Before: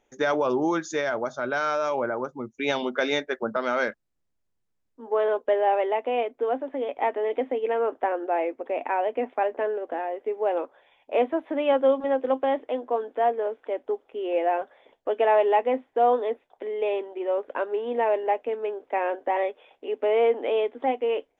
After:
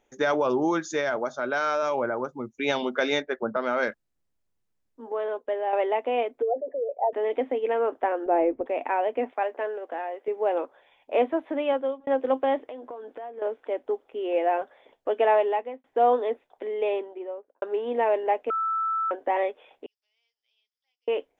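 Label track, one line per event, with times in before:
1.160000	1.830000	HPF 170 Hz
3.220000	3.830000	high shelf 3800 Hz -11 dB
5.120000	5.730000	gain -6 dB
6.420000	7.130000	formant sharpening exponent 3
8.260000	8.660000	tilt -4.5 dB/oct
9.310000	10.280000	HPF 590 Hz 6 dB/oct
11.320000	12.070000	fade out equal-power
12.670000	13.420000	compressor 8:1, threshold -35 dBFS
15.300000	15.840000	fade out
16.850000	17.620000	studio fade out
18.500000	19.110000	bleep 1320 Hz -23.5 dBFS
19.860000	21.080000	Butterworth band-pass 5100 Hz, Q 6.1

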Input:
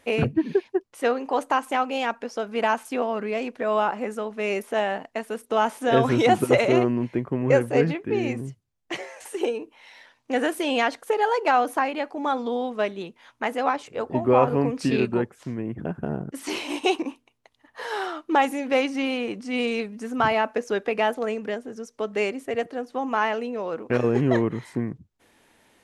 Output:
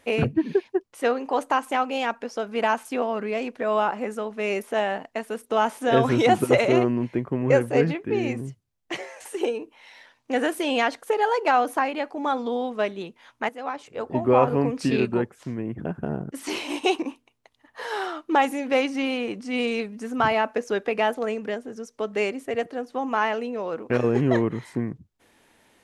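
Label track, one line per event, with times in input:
13.490000	14.200000	fade in, from -14 dB

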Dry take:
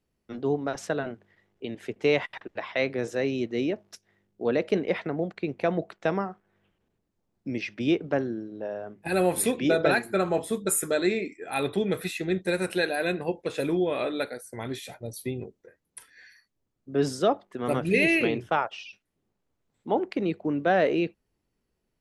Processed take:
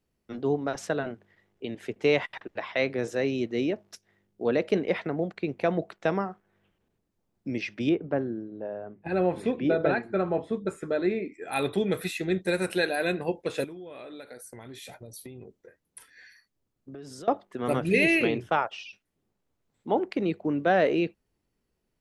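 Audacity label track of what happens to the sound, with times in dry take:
7.890000	11.340000	tape spacing loss at 10 kHz 31 dB
13.640000	17.280000	compressor 10:1, threshold -39 dBFS

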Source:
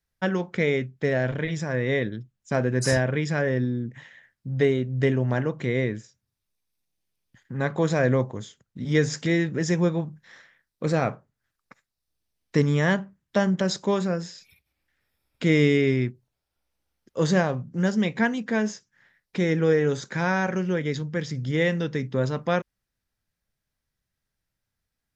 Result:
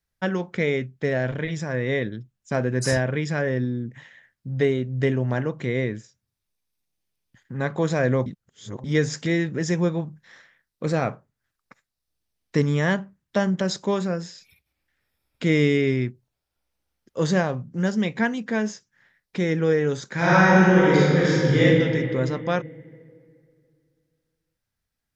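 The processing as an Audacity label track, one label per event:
8.260000	8.840000	reverse
20.130000	21.610000	reverb throw, RT60 2.5 s, DRR -9.5 dB

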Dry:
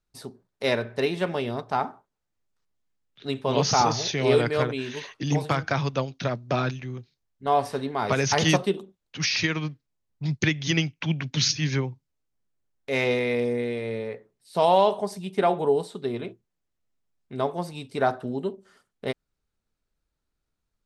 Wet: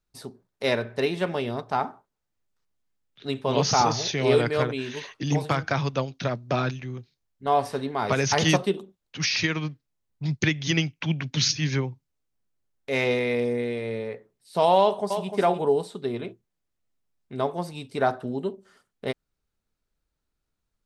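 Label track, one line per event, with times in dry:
14.800000	15.320000	echo throw 0.3 s, feedback 10%, level -7.5 dB

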